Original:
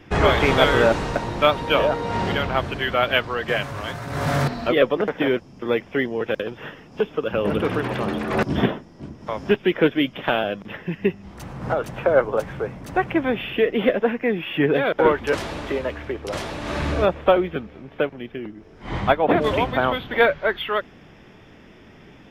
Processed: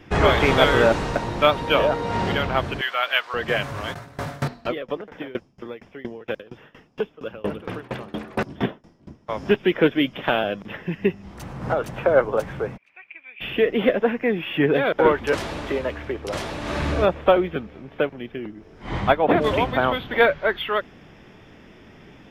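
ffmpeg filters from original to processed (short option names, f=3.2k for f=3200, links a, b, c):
-filter_complex "[0:a]asettb=1/sr,asplit=3[a][b][c];[a]atrim=end=2.814[d];[b]atrim=start=2.81:end=3.34,asetpts=PTS-STARTPTS,afade=t=in:d=0.004:c=qsin,afade=t=out:st=0.526:d=0.004:c=qsin,highpass=970[e];[c]atrim=start=3.336[f];[d][e]acrossfade=d=0.004:c1=hsin:c2=qsin[g];[g][f]acrossfade=d=0.004:c1=qsin:c2=hsin,asplit=3[h][i][j];[h]afade=t=out:st=3.93:d=0.02[k];[i]aeval=exprs='val(0)*pow(10,-24*if(lt(mod(4.3*n/s,1),2*abs(4.3)/1000),1-mod(4.3*n/s,1)/(2*abs(4.3)/1000),(mod(4.3*n/s,1)-2*abs(4.3)/1000)/(1-2*abs(4.3)/1000))/20)':c=same,afade=t=in:st=3.93:d=0.02,afade=t=out:st=9.28:d=0.02[l];[j]afade=t=in:st=9.28:d=0.02[m];[k][l][m]amix=inputs=3:normalize=0,asplit=3[n][o][p];[n]afade=t=out:st=12.76:d=0.02[q];[o]bandpass=f=2.4k:t=q:w=16,afade=t=in:st=12.76:d=0.02,afade=t=out:st=13.4:d=0.02[r];[p]afade=t=in:st=13.4:d=0.02[s];[q][r][s]amix=inputs=3:normalize=0"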